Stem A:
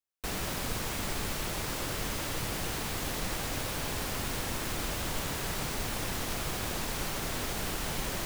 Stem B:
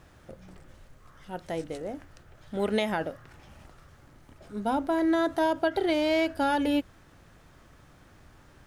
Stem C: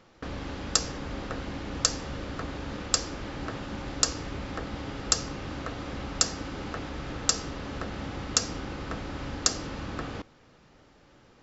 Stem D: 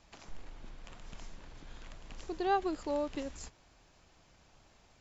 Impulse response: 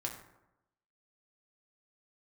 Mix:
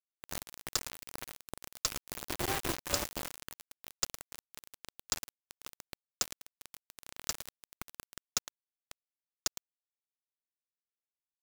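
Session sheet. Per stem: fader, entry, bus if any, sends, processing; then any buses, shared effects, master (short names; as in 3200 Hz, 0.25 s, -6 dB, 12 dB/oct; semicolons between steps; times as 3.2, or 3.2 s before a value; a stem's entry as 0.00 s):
-1.5 dB, 0.00 s, send -14 dB, echo send -18.5 dB, limiter -32.5 dBFS, peak gain reduction 11.5 dB
-18.5 dB, 1.60 s, no send, no echo send, inverse Chebyshev high-pass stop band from 330 Hz, stop band 80 dB; flipped gate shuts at -26 dBFS, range -28 dB; fast leveller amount 50%
-9.0 dB, 0.00 s, no send, echo send -13 dB, dry
0.0 dB, 0.00 s, send -3 dB, no echo send, median filter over 25 samples; soft clip -38 dBFS, distortion -6 dB; bell 74 Hz +2.5 dB 0.4 oct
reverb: on, RT60 0.90 s, pre-delay 4 ms
echo: echo 0.111 s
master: bit-crush 5-bit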